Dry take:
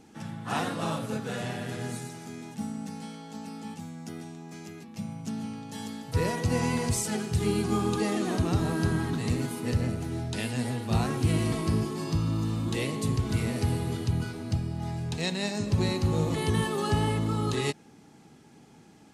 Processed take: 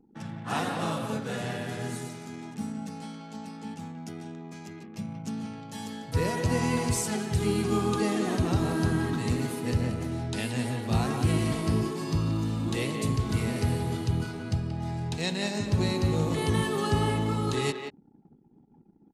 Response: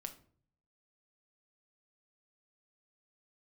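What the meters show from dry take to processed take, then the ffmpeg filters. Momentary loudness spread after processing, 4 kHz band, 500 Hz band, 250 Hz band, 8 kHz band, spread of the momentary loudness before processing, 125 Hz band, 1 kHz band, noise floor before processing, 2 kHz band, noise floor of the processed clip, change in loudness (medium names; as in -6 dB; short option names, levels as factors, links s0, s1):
14 LU, +0.5 dB, +1.0 dB, +0.5 dB, 0.0 dB, 13 LU, 0.0 dB, +1.0 dB, -54 dBFS, +1.0 dB, -58 dBFS, +0.5 dB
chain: -filter_complex "[0:a]asplit=2[s0][s1];[s1]adelay=180,highpass=300,lowpass=3400,asoftclip=type=hard:threshold=0.0668,volume=0.501[s2];[s0][s2]amix=inputs=2:normalize=0,anlmdn=0.01"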